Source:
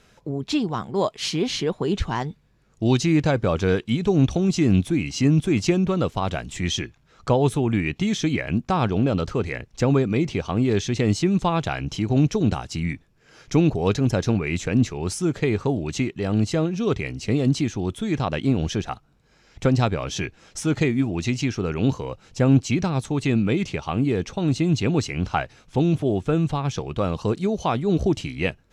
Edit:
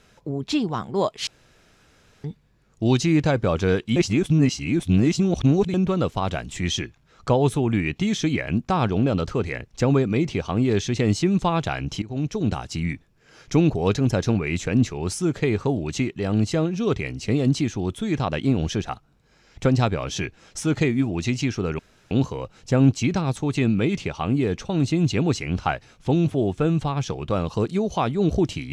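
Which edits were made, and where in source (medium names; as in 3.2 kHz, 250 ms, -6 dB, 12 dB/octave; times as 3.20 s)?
1.27–2.24 s: room tone
3.96–5.74 s: reverse
12.02–12.65 s: fade in, from -15.5 dB
21.79 s: insert room tone 0.32 s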